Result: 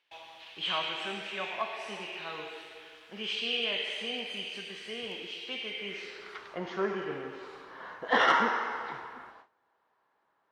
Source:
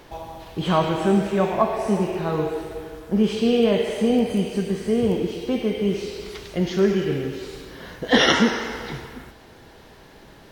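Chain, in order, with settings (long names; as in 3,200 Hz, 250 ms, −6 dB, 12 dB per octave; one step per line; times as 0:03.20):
noise gate with hold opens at −35 dBFS
band-pass filter sweep 2,800 Hz → 1,100 Hz, 0:05.69–0:06.57
soft clipping −16 dBFS, distortion −23 dB
level +3.5 dB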